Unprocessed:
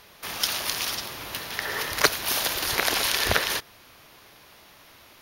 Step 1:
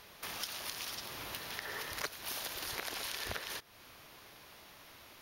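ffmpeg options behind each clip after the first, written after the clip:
-af "acompressor=threshold=-37dB:ratio=3,volume=-4dB"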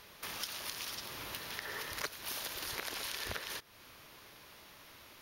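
-af "equalizer=f=730:w=5.2:g=-4"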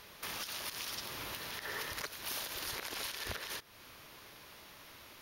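-af "alimiter=level_in=4.5dB:limit=-24dB:level=0:latency=1:release=62,volume=-4.5dB,volume=1.5dB"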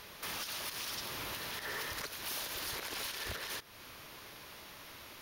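-af "asoftclip=type=tanh:threshold=-37.5dB,volume=3.5dB"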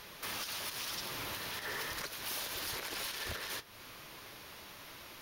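-af "flanger=delay=5.6:depth=5.2:regen=-56:speed=0.99:shape=sinusoidal,volume=4.5dB"

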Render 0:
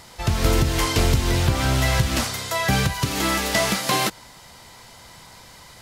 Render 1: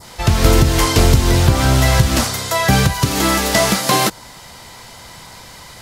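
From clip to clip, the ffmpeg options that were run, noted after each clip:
-af "adynamicequalizer=threshold=0.0158:dfrequency=2500:dqfactor=0.97:tfrequency=2500:tqfactor=0.97:attack=5:release=100:ratio=0.375:range=2:mode=cutabove:tftype=bell,volume=7.5dB"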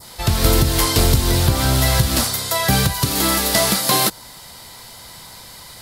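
-af "aexciter=amount=2.3:drive=1.3:freq=3.6k,volume=-4dB"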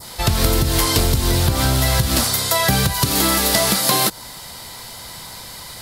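-af "acompressor=threshold=-17dB:ratio=6,volume=4dB"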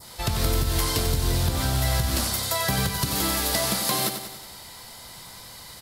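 -af "aecho=1:1:93|186|279|372|465|558|651:0.398|0.223|0.125|0.0699|0.0392|0.0219|0.0123,volume=-8.5dB"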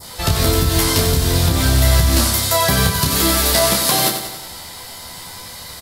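-af "aecho=1:1:12|30:0.562|0.531,volume=7dB"

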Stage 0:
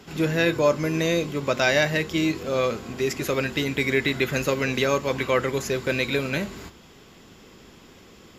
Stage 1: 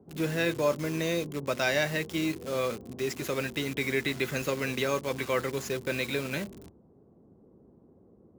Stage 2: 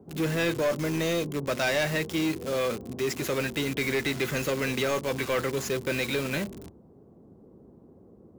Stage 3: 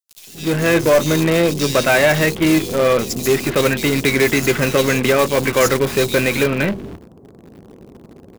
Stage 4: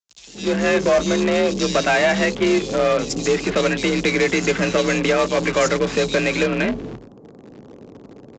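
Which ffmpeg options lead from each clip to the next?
-filter_complex "[0:a]highpass=68,acrossover=split=740[a][b];[b]acrusher=bits=5:mix=0:aa=0.000001[c];[a][c]amix=inputs=2:normalize=0,volume=-6.5dB"
-af "asoftclip=type=tanh:threshold=-26dB,volume=5dB"
-filter_complex "[0:a]acrossover=split=3400[a][b];[a]adelay=270[c];[c][b]amix=inputs=2:normalize=0,asplit=2[d][e];[e]acrusher=bits=5:dc=4:mix=0:aa=0.000001,volume=-7dB[f];[d][f]amix=inputs=2:normalize=0,dynaudnorm=f=370:g=3:m=9dB,volume=1dB"
-af "acompressor=threshold=-19dB:ratio=1.5,aresample=16000,aresample=44100,afreqshift=41"

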